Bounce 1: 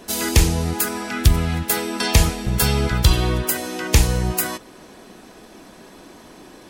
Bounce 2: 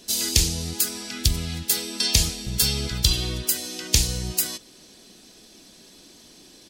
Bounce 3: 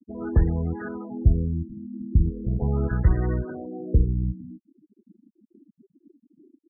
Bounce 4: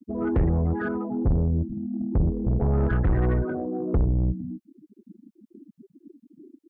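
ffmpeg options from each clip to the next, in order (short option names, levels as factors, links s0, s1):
-af "firequalizer=gain_entry='entry(220,0);entry(970,-8);entry(3200,8);entry(4500,13);entry(11000,7)':delay=0.05:min_phase=1,volume=0.376"
-af "afftfilt=real='re*gte(hypot(re,im),0.0158)':imag='im*gte(hypot(re,im),0.0158)':win_size=1024:overlap=0.75,afftfilt=real='re*lt(b*sr/1024,300*pow(2100/300,0.5+0.5*sin(2*PI*0.39*pts/sr)))':imag='im*lt(b*sr/1024,300*pow(2100/300,0.5+0.5*sin(2*PI*0.39*pts/sr)))':win_size=1024:overlap=0.75,volume=1.78"
-af "asoftclip=type=tanh:threshold=0.0631,volume=2.11"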